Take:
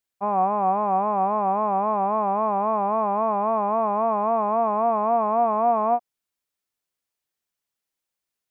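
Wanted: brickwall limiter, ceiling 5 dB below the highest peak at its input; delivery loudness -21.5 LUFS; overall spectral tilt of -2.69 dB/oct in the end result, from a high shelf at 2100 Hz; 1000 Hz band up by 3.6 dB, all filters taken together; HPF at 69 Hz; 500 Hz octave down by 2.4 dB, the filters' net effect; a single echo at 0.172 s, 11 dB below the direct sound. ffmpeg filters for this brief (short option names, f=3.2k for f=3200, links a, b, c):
-af "highpass=69,equalizer=f=500:t=o:g=-8.5,equalizer=f=1k:t=o:g=9,highshelf=f=2.1k:g=-7,alimiter=limit=-15dB:level=0:latency=1,aecho=1:1:172:0.282,volume=0.5dB"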